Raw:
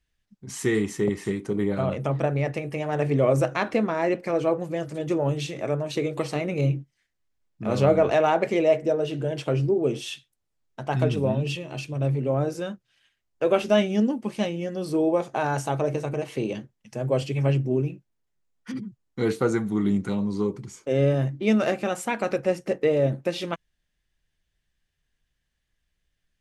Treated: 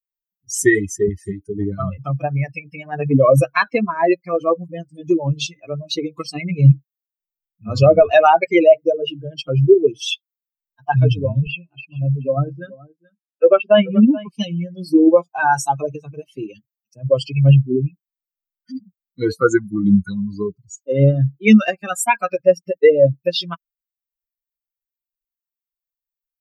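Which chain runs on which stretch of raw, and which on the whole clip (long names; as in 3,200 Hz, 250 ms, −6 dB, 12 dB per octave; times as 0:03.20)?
0:11.47–0:14.28: band-pass filter 100–2,600 Hz + single-tap delay 429 ms −7.5 dB
whole clip: spectral dynamics exaggerated over time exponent 3; dynamic equaliser 230 Hz, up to −3 dB, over −39 dBFS, Q 0.71; boost into a limiter +19.5 dB; level −1 dB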